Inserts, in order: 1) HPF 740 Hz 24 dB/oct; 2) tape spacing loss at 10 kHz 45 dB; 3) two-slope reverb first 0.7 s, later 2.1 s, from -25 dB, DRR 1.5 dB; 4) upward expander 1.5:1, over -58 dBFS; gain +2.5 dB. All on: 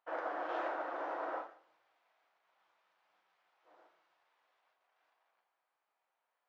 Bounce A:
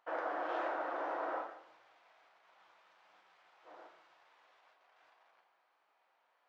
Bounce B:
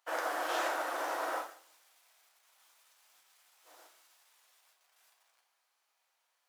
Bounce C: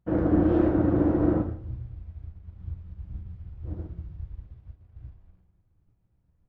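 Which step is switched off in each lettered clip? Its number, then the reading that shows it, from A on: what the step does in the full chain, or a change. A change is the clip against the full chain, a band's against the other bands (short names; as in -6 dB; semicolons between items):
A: 4, momentary loudness spread change +15 LU; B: 2, 4 kHz band +12.0 dB; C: 1, 250 Hz band +28.5 dB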